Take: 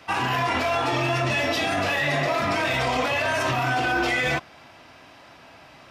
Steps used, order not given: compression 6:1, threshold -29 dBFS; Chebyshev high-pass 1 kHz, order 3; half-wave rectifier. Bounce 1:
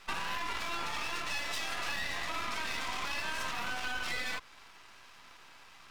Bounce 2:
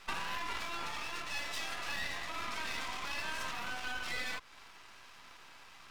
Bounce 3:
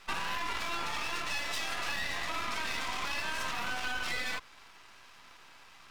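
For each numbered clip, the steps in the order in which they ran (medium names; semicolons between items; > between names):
Chebyshev high-pass > compression > half-wave rectifier; compression > Chebyshev high-pass > half-wave rectifier; Chebyshev high-pass > half-wave rectifier > compression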